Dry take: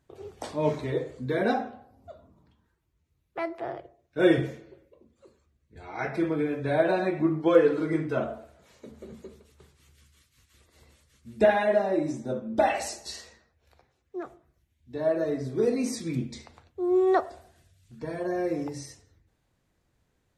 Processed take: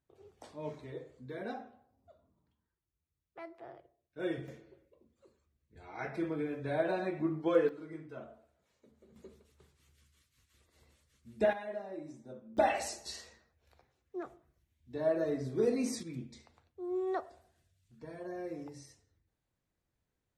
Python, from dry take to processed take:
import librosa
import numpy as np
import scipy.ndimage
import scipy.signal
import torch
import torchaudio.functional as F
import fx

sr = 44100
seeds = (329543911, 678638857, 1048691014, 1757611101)

y = fx.gain(x, sr, db=fx.steps((0.0, -15.5), (4.48, -8.5), (7.69, -18.5), (9.16, -8.5), (11.53, -17.5), (12.57, -5.0), (16.03, -12.5)))